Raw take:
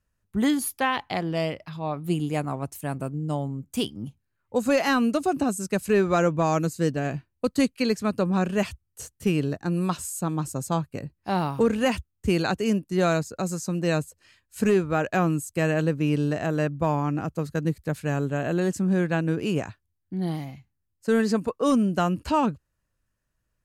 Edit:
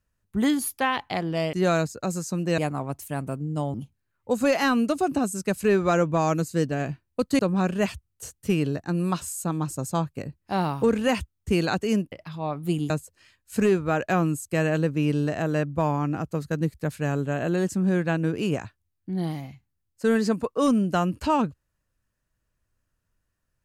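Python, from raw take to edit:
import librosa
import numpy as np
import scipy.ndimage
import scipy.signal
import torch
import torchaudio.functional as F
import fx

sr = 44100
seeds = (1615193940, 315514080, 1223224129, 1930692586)

y = fx.edit(x, sr, fx.swap(start_s=1.53, length_s=0.78, other_s=12.89, other_length_s=1.05),
    fx.cut(start_s=3.47, length_s=0.52),
    fx.cut(start_s=7.64, length_s=0.52), tone=tone)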